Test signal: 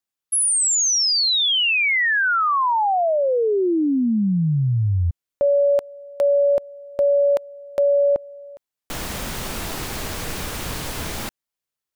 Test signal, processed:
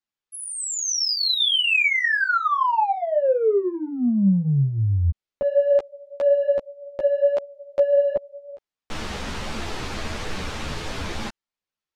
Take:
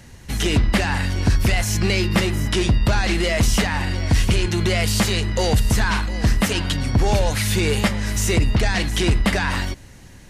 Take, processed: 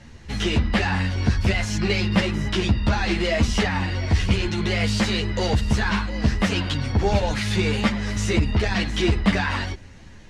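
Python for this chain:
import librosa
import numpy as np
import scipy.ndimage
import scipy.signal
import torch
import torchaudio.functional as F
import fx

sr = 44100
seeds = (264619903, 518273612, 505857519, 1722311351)

p1 = scipy.signal.sosfilt(scipy.signal.butter(2, 5100.0, 'lowpass', fs=sr, output='sos'), x)
p2 = 10.0 ** (-20.0 / 20.0) * np.tanh(p1 / 10.0 ** (-20.0 / 20.0))
p3 = p1 + (p2 * librosa.db_to_amplitude(-10.0))
y = fx.ensemble(p3, sr)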